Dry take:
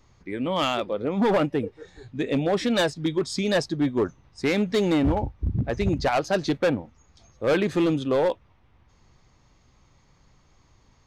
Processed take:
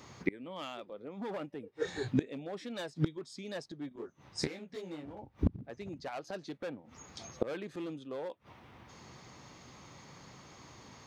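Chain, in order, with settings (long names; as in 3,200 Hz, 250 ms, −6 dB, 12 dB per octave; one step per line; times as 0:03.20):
high-pass filter 150 Hz 12 dB per octave
gate with flip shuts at −25 dBFS, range −28 dB
0:03.89–0:05.19: micro pitch shift up and down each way 41 cents
level +10 dB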